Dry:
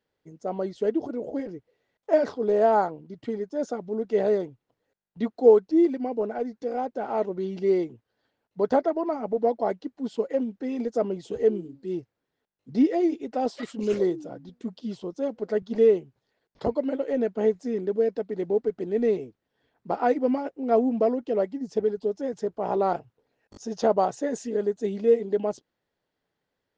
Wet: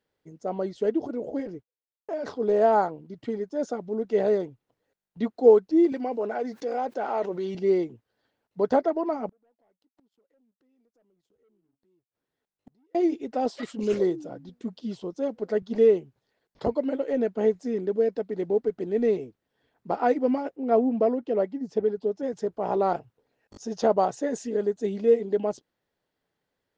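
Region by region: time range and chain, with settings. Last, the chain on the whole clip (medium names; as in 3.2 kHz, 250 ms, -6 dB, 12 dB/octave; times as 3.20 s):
1.54–2.26 s: expander -46 dBFS + band-stop 1.9 kHz, Q 15 + compression 3:1, threshold -31 dBFS
5.92–7.55 s: high-pass 520 Hz 6 dB/octave + level flattener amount 50%
9.29–12.95 s: waveshaping leveller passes 2 + compression 3:1, threshold -34 dBFS + inverted gate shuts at -37 dBFS, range -36 dB
20.56–22.23 s: high-pass 80 Hz + treble shelf 5.7 kHz -11 dB
whole clip: none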